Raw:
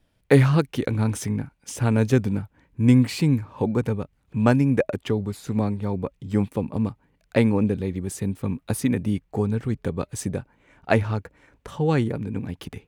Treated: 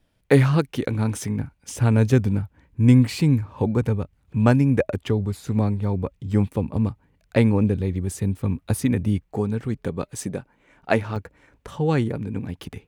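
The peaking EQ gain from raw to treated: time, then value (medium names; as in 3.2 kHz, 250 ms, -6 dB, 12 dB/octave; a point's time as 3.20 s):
peaking EQ 76 Hz 1.1 oct
-1 dB
from 1.39 s +8.5 dB
from 9.23 s -3 dB
from 10.04 s -9.5 dB
from 11.16 s +1.5 dB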